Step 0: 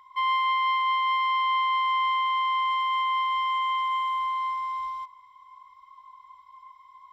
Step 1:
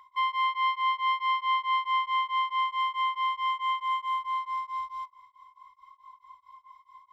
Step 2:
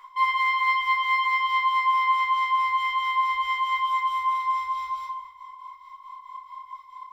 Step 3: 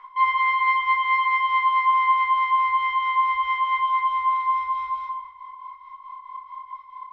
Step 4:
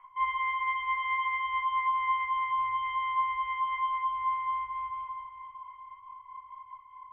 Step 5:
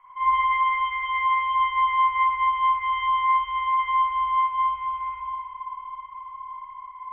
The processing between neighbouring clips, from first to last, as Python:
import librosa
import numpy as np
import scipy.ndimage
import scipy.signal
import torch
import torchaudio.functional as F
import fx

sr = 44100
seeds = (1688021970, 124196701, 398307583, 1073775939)

y1 = fx.peak_eq(x, sr, hz=170.0, db=-8.0, octaves=0.46)
y1 = y1 * np.abs(np.cos(np.pi * 4.6 * np.arange(len(y1)) / sr))
y2 = fx.low_shelf(y1, sr, hz=270.0, db=-9.0)
y2 = fx.room_shoebox(y2, sr, seeds[0], volume_m3=100.0, walls='mixed', distance_m=1.9)
y2 = F.gain(torch.from_numpy(y2), 3.5).numpy()
y3 = scipy.signal.sosfilt(scipy.signal.butter(2, 2400.0, 'lowpass', fs=sr, output='sos'), y2)
y3 = F.gain(torch.from_numpy(y3), 3.0).numpy()
y4 = scipy.signal.sosfilt(scipy.signal.cheby1(6, 6, 3200.0, 'lowpass', fs=sr, output='sos'), y3)
y4 = fx.low_shelf_res(y4, sr, hz=160.0, db=11.0, q=3.0)
y4 = fx.echo_diffused(y4, sr, ms=575, feedback_pct=51, wet_db=-13.5)
y4 = F.gain(torch.from_numpy(y4), -7.5).numpy()
y5 = fx.rev_spring(y4, sr, rt60_s=1.5, pass_ms=(55,), chirp_ms=60, drr_db=-8.0)